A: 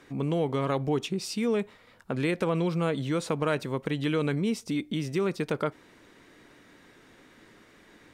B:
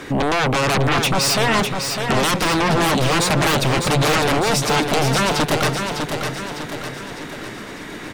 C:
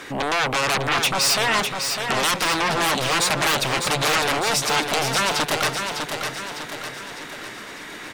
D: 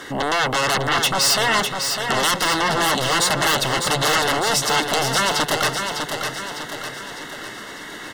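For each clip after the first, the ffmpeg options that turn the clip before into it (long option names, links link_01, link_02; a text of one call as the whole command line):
ffmpeg -i in.wav -filter_complex "[0:a]aeval=exprs='0.178*sin(PI/2*7.08*val(0)/0.178)':channel_layout=same,asplit=2[link_01][link_02];[link_02]aecho=0:1:603|1206|1809|2412|3015|3618:0.501|0.256|0.13|0.0665|0.0339|0.0173[link_03];[link_01][link_03]amix=inputs=2:normalize=0" out.wav
ffmpeg -i in.wav -af "lowshelf=frequency=480:gain=-12" out.wav
ffmpeg -i in.wav -af "asuperstop=centerf=2400:order=12:qfactor=6.5,volume=2dB" out.wav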